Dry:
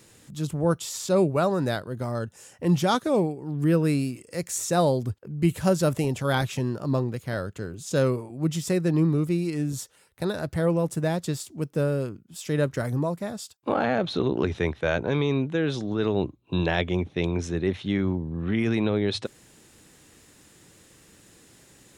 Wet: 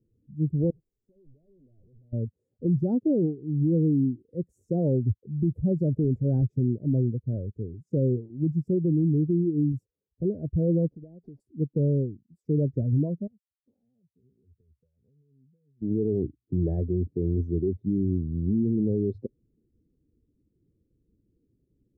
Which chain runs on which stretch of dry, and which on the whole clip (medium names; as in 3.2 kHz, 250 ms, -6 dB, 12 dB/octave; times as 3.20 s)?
0.70–2.13 s: one-bit comparator + expander -13 dBFS
10.89–11.40 s: CVSD coder 32 kbps + bass shelf 140 Hz -12 dB + compression 8:1, threshold -35 dBFS
13.27–15.82 s: amplifier tone stack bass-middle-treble 5-5-5 + compression 16:1, threshold -47 dBFS + comb of notches 320 Hz
whole clip: expander on every frequency bin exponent 1.5; inverse Chebyshev low-pass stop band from 1.1 kHz, stop band 50 dB; peak limiter -25.5 dBFS; trim +8.5 dB